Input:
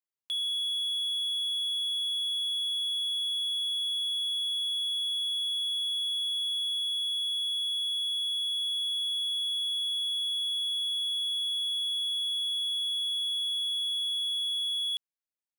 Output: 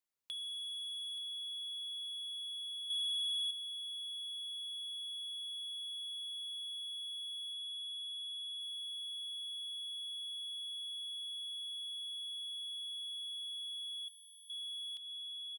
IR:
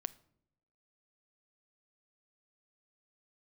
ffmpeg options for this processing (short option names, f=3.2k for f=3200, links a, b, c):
-filter_complex "[0:a]asoftclip=type=tanh:threshold=-35.5dB,aecho=1:1:878|1756|2634|3512|4390|5268:0.299|0.152|0.0776|0.0396|0.0202|0.0103,acompressor=threshold=-44dB:ratio=6,asettb=1/sr,asplit=3[a][b][c];[a]atrim=end=2.904[d];[b]atrim=start=2.9:end=3.51,asetpts=PTS-STARTPTS,afade=t=in:d=0.004:c=qsin,afade=t=out:st=0.606:d=0.004:c=qsin,equalizer=f=6.1k:w=0.71:g=14[e];[c]atrim=start=3.506[f];[d][e]acrossfade=d=0.004:c1=hsin:c2=qsin[g];[g][f]acrossfade=d=0.004:c1=qsin:c2=hsin,asettb=1/sr,asplit=3[h][i][j];[h]atrim=end=7.534[k];[i]atrim=start=7.53:end=8.61,asetpts=PTS-STARTPTS,afade=t=in:d=0.004:c=qsin,afade=t=out:st=1.076:d=0.004:c=qsin,lowpass=11k[l];[j]atrim=start=8.606[m];[k][l]acrossfade=d=0.004:c1=hsin:c2=qsin[n];[n][m]acrossfade=d=0.004:c1=qsin:c2=hsin,asettb=1/sr,asplit=3[o][p][q];[o]atrim=end=14.084[r];[p]atrim=start=14.08:end=14.5,asetpts=PTS-STARTPTS,afade=t=in:d=0.004:c=qsin,afade=t=out:st=0.416:d=0.004:c=qsin,bandreject=f=3.4k:w=7[s];[q]atrim=start=14.496[t];[r][s]acrossfade=d=0.004:c1=hsin:c2=qsin[u];[u][t]acrossfade=d=0.004:c1=qsin:c2=hsin,volume=1.5dB"